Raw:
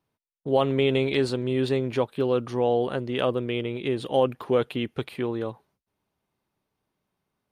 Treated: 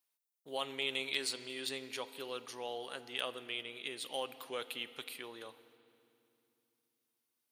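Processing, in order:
first difference
on a send: convolution reverb RT60 2.8 s, pre-delay 4 ms, DRR 12.5 dB
on the sum: level +3.5 dB

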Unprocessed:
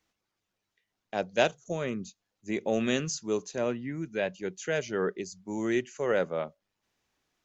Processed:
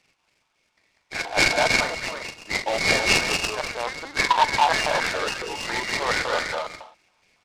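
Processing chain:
hearing-aid frequency compression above 2,100 Hz 4 to 1
0:04.19–0:05.48: sound drawn into the spectrogram fall 350–1,100 Hz −33 dBFS
on a send: multi-tap delay 169/194/326/397 ms −17/−4/−6.5/−19 dB
on the sum: feedback delay network reverb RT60 0.52 s, low-frequency decay 1.35×, high-frequency decay 0.7×, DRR 3 dB
0:03.59–0:05.04: linear-prediction vocoder at 8 kHz pitch kept
auto-filter high-pass square 3.6 Hz 900–2,000 Hz
boost into a limiter +13 dB
short delay modulated by noise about 2,200 Hz, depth 0.053 ms
level −7.5 dB

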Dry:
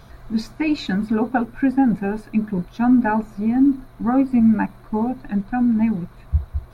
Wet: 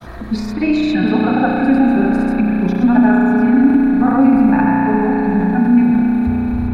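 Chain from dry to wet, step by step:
granular cloud, pitch spread up and down by 0 semitones
on a send: echo through a band-pass that steps 255 ms, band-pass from 3,200 Hz, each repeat −0.7 octaves, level −11 dB
on the sum: spring reverb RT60 3.9 s, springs 33 ms, chirp 50 ms, DRR −2 dB
transient designer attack +1 dB, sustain +5 dB
multiband upward and downward compressor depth 40%
level +2.5 dB

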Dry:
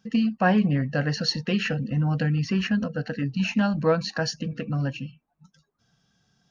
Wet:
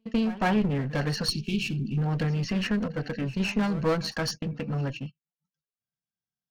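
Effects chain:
asymmetric clip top −29 dBFS
backwards echo 158 ms −17 dB
noise gate −35 dBFS, range −32 dB
gain on a spectral selection 0:01.29–0:01.98, 420–2,200 Hz −24 dB

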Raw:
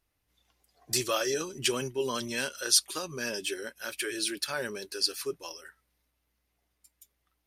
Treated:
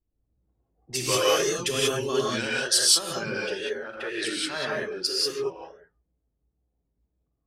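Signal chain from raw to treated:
tape wow and flutter 140 cents
low-pass that shuts in the quiet parts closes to 360 Hz, open at −25 dBFS
reverb whose tail is shaped and stops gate 210 ms rising, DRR −5 dB

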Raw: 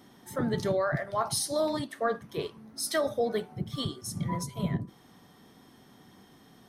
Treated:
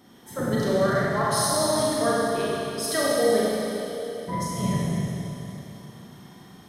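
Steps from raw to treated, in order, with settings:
0:03.43–0:04.28: formant filter e
four-comb reverb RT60 3.3 s, combs from 32 ms, DRR −6.5 dB

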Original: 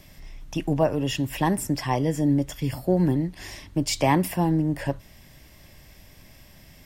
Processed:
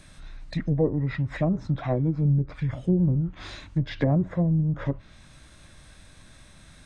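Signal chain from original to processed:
treble cut that deepens with the level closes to 800 Hz, closed at −18 dBFS
formants moved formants −6 semitones
notch filter 400 Hz, Q 12

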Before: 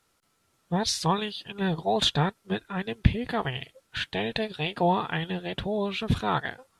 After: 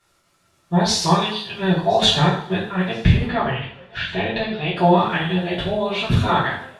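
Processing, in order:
high-shelf EQ 11,000 Hz −8.5 dB
notch filter 3,200 Hz, Q 26
0:03.24–0:04.76: high-frequency loss of the air 190 metres
feedback echo with a high-pass in the loop 1,024 ms, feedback 50%, level −24 dB
coupled-rooms reverb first 0.55 s, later 2 s, from −28 dB, DRR −8.5 dB

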